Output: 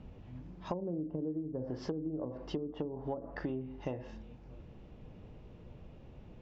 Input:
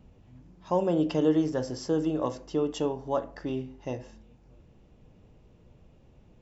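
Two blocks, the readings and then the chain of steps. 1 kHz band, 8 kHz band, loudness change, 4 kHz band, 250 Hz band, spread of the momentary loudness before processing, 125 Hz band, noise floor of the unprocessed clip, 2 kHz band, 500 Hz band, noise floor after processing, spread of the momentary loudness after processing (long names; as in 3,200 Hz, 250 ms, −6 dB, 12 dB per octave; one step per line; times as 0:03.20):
−12.0 dB, can't be measured, −10.5 dB, −11.0 dB, −9.5 dB, 12 LU, −6.0 dB, −58 dBFS, −6.0 dB, −11.0 dB, −54 dBFS, 16 LU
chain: treble cut that deepens with the level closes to 360 Hz, closed at −23.5 dBFS
downward compressor 16 to 1, threshold −38 dBFS, peak gain reduction 17 dB
low-pass filter 4,200 Hz 12 dB per octave
level +4.5 dB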